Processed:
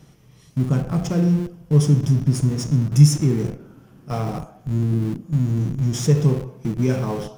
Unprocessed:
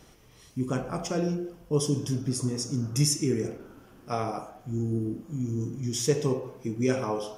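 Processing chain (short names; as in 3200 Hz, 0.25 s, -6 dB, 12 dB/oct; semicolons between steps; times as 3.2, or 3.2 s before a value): in parallel at -7 dB: Schmitt trigger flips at -31.5 dBFS; on the sum: bell 150 Hz +14.5 dB 0.99 oct; gain -1 dB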